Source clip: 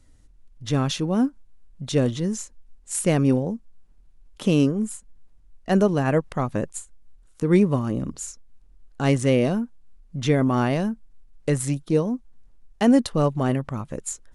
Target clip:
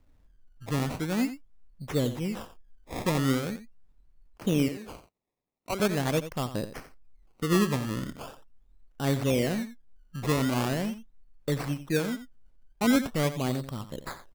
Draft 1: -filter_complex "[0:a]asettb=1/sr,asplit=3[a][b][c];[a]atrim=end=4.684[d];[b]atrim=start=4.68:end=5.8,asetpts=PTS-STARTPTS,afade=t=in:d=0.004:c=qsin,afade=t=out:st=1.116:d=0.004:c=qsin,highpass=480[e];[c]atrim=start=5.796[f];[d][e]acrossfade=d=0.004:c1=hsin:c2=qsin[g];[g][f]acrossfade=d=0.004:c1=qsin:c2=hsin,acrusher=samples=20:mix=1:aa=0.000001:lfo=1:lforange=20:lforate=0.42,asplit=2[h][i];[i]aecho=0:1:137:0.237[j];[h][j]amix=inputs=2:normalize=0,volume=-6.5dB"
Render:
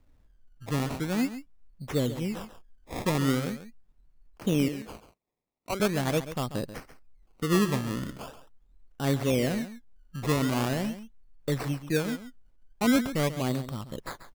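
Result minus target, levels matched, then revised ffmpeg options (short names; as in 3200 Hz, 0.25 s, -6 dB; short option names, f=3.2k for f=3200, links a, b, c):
echo 49 ms late
-filter_complex "[0:a]asettb=1/sr,asplit=3[a][b][c];[a]atrim=end=4.684[d];[b]atrim=start=4.68:end=5.8,asetpts=PTS-STARTPTS,afade=t=in:d=0.004:c=qsin,afade=t=out:st=1.116:d=0.004:c=qsin,highpass=480[e];[c]atrim=start=5.796[f];[d][e]acrossfade=d=0.004:c1=hsin:c2=qsin[g];[g][f]acrossfade=d=0.004:c1=qsin:c2=hsin,acrusher=samples=20:mix=1:aa=0.000001:lfo=1:lforange=20:lforate=0.42,asplit=2[h][i];[i]aecho=0:1:88:0.237[j];[h][j]amix=inputs=2:normalize=0,volume=-6.5dB"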